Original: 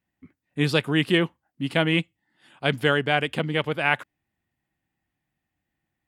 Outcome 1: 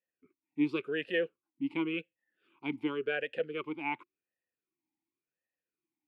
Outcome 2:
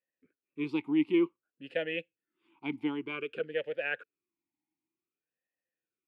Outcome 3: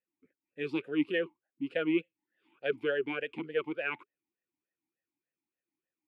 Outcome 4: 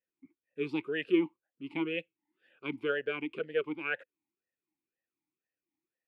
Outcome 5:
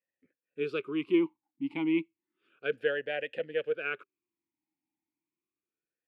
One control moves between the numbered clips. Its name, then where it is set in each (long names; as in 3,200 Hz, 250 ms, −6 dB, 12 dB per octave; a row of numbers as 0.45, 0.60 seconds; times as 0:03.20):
formant filter swept between two vowels, speed: 0.91, 0.54, 3.4, 2, 0.31 Hertz